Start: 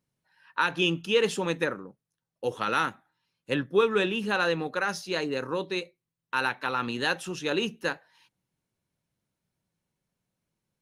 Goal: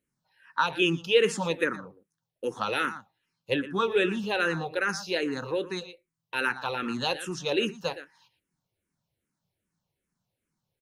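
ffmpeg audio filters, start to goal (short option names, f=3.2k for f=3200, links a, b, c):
-filter_complex "[0:a]aecho=1:1:117:0.188,asplit=2[a][b];[b]afreqshift=-2.5[c];[a][c]amix=inputs=2:normalize=1,volume=2.5dB"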